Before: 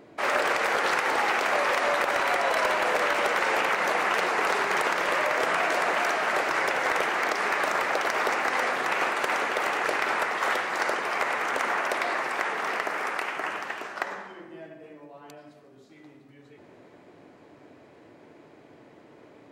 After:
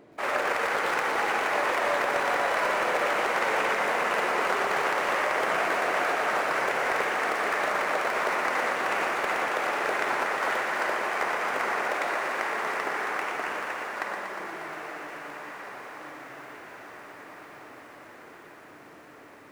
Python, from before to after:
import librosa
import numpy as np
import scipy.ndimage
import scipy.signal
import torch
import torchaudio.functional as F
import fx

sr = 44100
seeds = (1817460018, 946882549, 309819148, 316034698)

y = scipy.ndimage.median_filter(x, 9, mode='constant')
y = fx.echo_diffused(y, sr, ms=1653, feedback_pct=56, wet_db=-9.5)
y = fx.echo_crushed(y, sr, ms=119, feedback_pct=80, bits=9, wet_db=-8)
y = y * librosa.db_to_amplitude(-2.5)